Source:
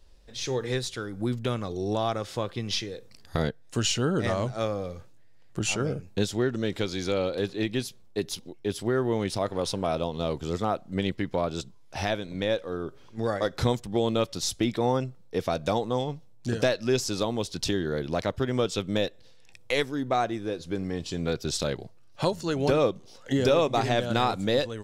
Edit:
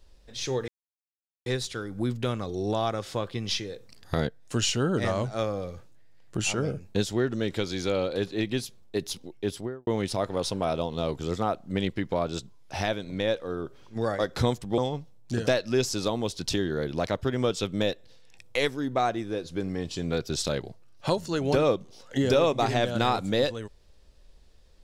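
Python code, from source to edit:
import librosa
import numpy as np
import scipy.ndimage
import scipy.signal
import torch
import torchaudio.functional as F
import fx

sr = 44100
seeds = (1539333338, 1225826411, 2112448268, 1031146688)

y = fx.studio_fade_out(x, sr, start_s=8.68, length_s=0.41)
y = fx.edit(y, sr, fx.insert_silence(at_s=0.68, length_s=0.78),
    fx.cut(start_s=14.0, length_s=1.93), tone=tone)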